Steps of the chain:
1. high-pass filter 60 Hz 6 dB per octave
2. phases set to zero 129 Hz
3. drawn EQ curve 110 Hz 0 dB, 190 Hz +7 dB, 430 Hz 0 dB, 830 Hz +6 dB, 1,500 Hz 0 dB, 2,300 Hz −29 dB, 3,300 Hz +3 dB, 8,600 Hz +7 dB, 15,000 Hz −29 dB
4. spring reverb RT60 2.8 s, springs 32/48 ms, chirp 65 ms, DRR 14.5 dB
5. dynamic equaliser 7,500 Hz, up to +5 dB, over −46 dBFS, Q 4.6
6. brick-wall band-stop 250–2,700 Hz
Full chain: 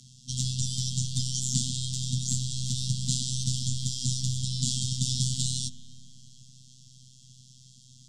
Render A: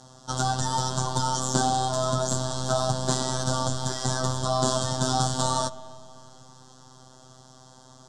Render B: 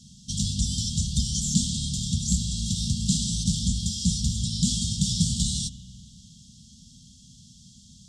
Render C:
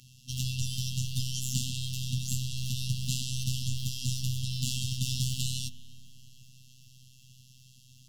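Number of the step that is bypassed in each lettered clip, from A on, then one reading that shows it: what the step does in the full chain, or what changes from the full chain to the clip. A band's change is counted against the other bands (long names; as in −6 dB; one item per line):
6, 250 Hz band +6.0 dB
2, 250 Hz band +7.5 dB
3, change in crest factor +1.5 dB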